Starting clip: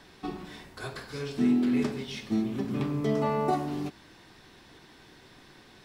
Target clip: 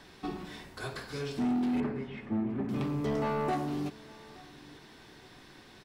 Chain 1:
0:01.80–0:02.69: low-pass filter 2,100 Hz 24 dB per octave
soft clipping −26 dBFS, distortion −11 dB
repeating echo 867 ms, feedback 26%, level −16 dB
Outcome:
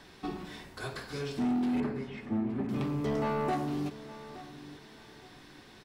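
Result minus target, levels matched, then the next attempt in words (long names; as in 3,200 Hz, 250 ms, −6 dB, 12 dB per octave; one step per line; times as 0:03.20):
echo-to-direct +6.5 dB
0:01.80–0:02.69: low-pass filter 2,100 Hz 24 dB per octave
soft clipping −26 dBFS, distortion −11 dB
repeating echo 867 ms, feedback 26%, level −22.5 dB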